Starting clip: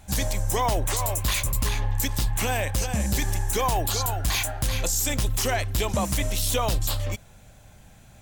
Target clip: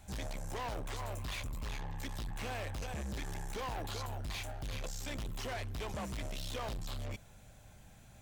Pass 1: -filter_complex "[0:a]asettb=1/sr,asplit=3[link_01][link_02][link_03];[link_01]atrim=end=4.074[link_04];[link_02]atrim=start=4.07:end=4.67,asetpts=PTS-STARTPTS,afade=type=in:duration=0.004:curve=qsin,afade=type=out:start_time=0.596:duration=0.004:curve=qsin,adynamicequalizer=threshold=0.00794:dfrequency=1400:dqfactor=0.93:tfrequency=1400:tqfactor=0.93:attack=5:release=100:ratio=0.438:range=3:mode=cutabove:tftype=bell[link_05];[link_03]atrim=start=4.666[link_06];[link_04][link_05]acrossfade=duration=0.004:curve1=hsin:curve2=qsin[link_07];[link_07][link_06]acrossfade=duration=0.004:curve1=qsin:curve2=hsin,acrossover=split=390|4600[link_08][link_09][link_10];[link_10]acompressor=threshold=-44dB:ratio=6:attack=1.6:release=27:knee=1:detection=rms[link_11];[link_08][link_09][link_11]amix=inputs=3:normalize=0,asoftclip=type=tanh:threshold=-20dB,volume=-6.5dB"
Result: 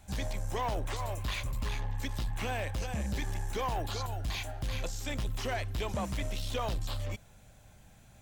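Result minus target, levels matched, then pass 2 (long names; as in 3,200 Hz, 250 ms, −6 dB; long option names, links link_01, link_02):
soft clipping: distortion −10 dB
-filter_complex "[0:a]asettb=1/sr,asplit=3[link_01][link_02][link_03];[link_01]atrim=end=4.074[link_04];[link_02]atrim=start=4.07:end=4.67,asetpts=PTS-STARTPTS,afade=type=in:duration=0.004:curve=qsin,afade=type=out:start_time=0.596:duration=0.004:curve=qsin,adynamicequalizer=threshold=0.00794:dfrequency=1400:dqfactor=0.93:tfrequency=1400:tqfactor=0.93:attack=5:release=100:ratio=0.438:range=3:mode=cutabove:tftype=bell[link_05];[link_03]atrim=start=4.666[link_06];[link_04][link_05]acrossfade=duration=0.004:curve1=hsin:curve2=qsin[link_07];[link_07][link_06]acrossfade=duration=0.004:curve1=qsin:curve2=hsin,acrossover=split=390|4600[link_08][link_09][link_10];[link_10]acompressor=threshold=-44dB:ratio=6:attack=1.6:release=27:knee=1:detection=rms[link_11];[link_08][link_09][link_11]amix=inputs=3:normalize=0,asoftclip=type=tanh:threshold=-30.5dB,volume=-6.5dB"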